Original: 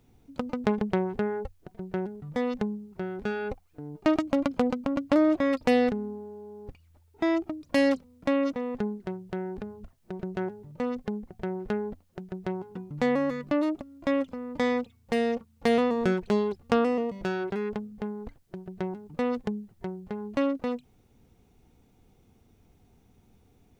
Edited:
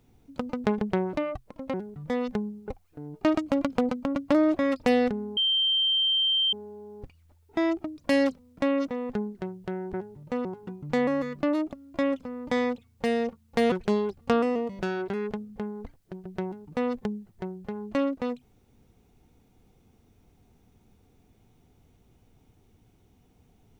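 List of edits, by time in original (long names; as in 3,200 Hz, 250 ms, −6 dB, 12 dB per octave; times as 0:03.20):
0:01.13–0:02.00: play speed 143%
0:02.94–0:03.49: remove
0:06.18: insert tone 3,140 Hz −21 dBFS 1.16 s
0:09.59–0:10.42: remove
0:10.93–0:12.53: remove
0:15.80–0:16.14: remove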